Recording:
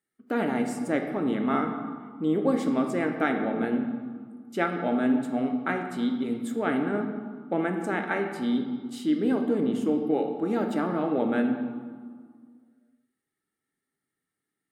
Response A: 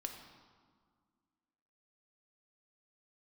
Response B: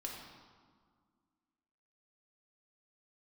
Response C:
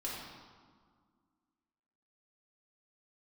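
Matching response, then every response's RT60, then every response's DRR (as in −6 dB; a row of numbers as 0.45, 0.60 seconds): A; 1.8, 1.8, 1.8 seconds; 3.5, −2.0, −6.5 decibels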